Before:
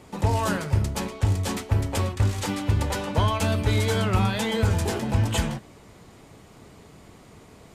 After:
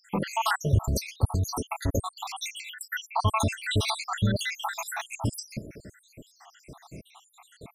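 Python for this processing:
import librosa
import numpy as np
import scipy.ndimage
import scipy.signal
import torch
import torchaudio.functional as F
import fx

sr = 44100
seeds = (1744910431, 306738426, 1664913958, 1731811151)

p1 = fx.spec_dropout(x, sr, seeds[0], share_pct=81)
p2 = fx.over_compress(p1, sr, threshold_db=-31.0, ratio=-0.5)
y = p1 + (p2 * 10.0 ** (-2.0 / 20.0))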